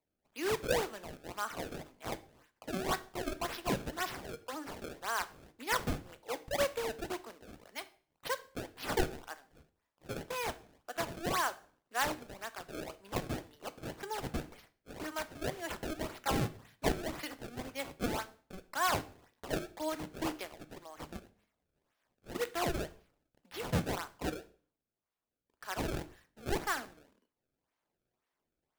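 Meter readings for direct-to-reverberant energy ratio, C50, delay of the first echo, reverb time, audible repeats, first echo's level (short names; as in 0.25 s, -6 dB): 11.5 dB, 18.0 dB, none, 0.45 s, none, none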